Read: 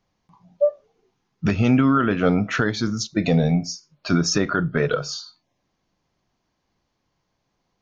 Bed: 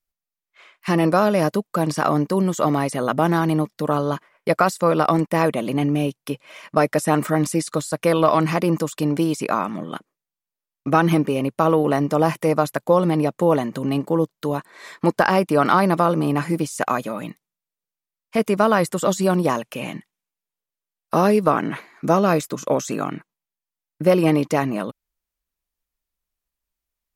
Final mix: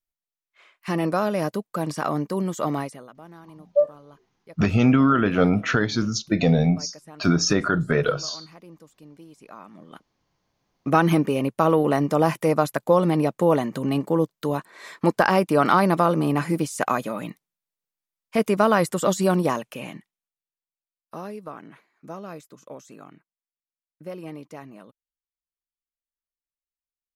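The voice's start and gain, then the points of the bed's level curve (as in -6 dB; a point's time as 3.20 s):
3.15 s, 0.0 dB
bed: 2.80 s -6 dB
3.12 s -26.5 dB
9.30 s -26.5 dB
10.55 s -1.5 dB
19.35 s -1.5 dB
21.37 s -20 dB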